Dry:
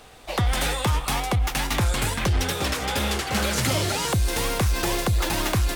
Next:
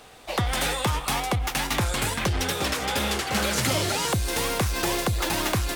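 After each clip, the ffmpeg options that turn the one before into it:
-af "lowshelf=f=85:g=-8.5"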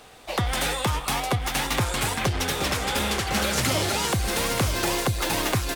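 -af "aecho=1:1:930:0.422"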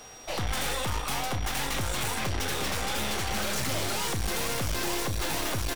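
-filter_complex "[0:a]aeval=exprs='(tanh(44.7*val(0)+0.75)-tanh(0.75))/44.7':c=same,aeval=exprs='val(0)+0.00224*sin(2*PI*5700*n/s)':c=same,asplit=2[a][b];[b]adelay=37,volume=-11dB[c];[a][c]amix=inputs=2:normalize=0,volume=4dB"

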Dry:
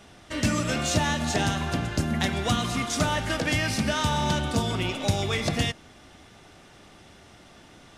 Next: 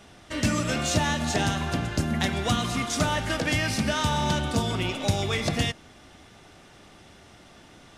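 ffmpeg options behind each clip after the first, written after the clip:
-af anull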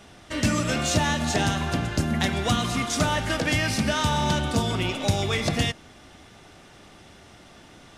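-af "acontrast=44,volume=-4dB"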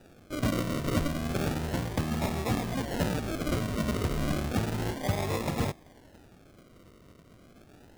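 -af "acrusher=samples=41:mix=1:aa=0.000001:lfo=1:lforange=24.6:lforate=0.32,volume=-5.5dB"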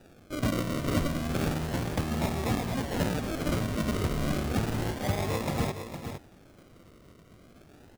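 -af "aecho=1:1:461:0.376"

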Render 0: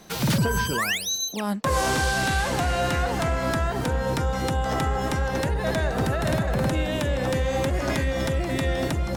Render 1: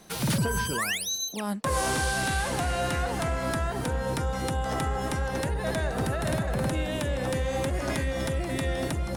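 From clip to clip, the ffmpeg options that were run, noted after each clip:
-af "equalizer=f=9.7k:t=o:w=0.31:g=9,volume=-4dB"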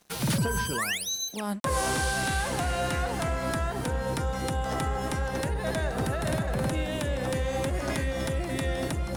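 -af "areverse,acompressor=mode=upward:threshold=-32dB:ratio=2.5,areverse,aeval=exprs='sgn(val(0))*max(abs(val(0))-0.00335,0)':c=same"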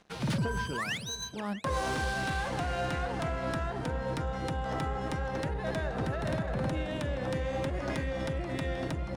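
-af "acompressor=mode=upward:threshold=-49dB:ratio=2.5,aecho=1:1:638:0.211,adynamicsmooth=sensitivity=3.5:basefreq=3.6k,volume=-3.5dB"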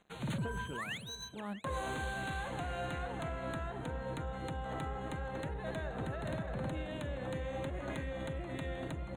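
-af "asuperstop=centerf=5200:order=12:qfactor=2.6,volume=-6.5dB"

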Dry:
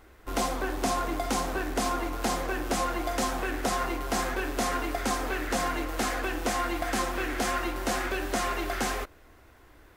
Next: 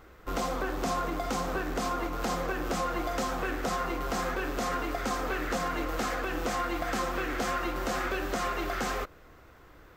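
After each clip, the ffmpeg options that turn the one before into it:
-af "equalizer=f=160:t=o:w=0.33:g=11,equalizer=f=500:t=o:w=0.33:g=5,equalizer=f=1.25k:t=o:w=0.33:g=6,equalizer=f=10k:t=o:w=0.33:g=-11,alimiter=limit=-22dB:level=0:latency=1:release=164"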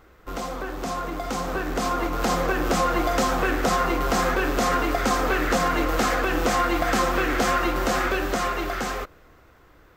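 -af "dynaudnorm=f=210:g=17:m=9dB"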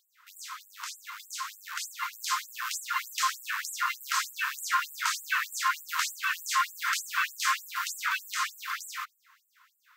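-af "afftfilt=real='re*gte(b*sr/1024,880*pow(7400/880,0.5+0.5*sin(2*PI*3.3*pts/sr)))':imag='im*gte(b*sr/1024,880*pow(7400/880,0.5+0.5*sin(2*PI*3.3*pts/sr)))':win_size=1024:overlap=0.75"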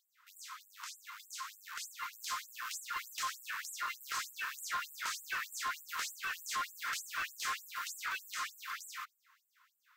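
-af "asoftclip=type=tanh:threshold=-23.5dB,volume=-7dB"

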